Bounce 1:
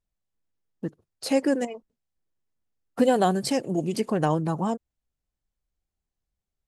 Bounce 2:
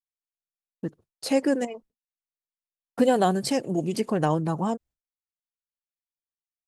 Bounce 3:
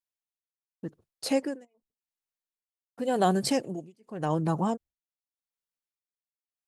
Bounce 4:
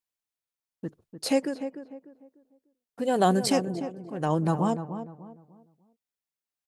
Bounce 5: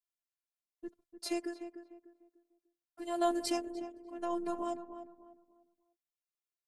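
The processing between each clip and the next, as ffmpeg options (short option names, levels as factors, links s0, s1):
-af "agate=range=0.0224:threshold=0.00447:ratio=3:detection=peak"
-af "tremolo=f=0.88:d=0.99"
-filter_complex "[0:a]asplit=2[s0][s1];[s1]adelay=298,lowpass=f=1300:p=1,volume=0.335,asplit=2[s2][s3];[s3]adelay=298,lowpass=f=1300:p=1,volume=0.33,asplit=2[s4][s5];[s5]adelay=298,lowpass=f=1300:p=1,volume=0.33,asplit=2[s6][s7];[s7]adelay=298,lowpass=f=1300:p=1,volume=0.33[s8];[s0][s2][s4][s6][s8]amix=inputs=5:normalize=0,volume=1.26"
-af "afftfilt=real='hypot(re,im)*cos(PI*b)':imag='0':win_size=512:overlap=0.75,volume=0.531"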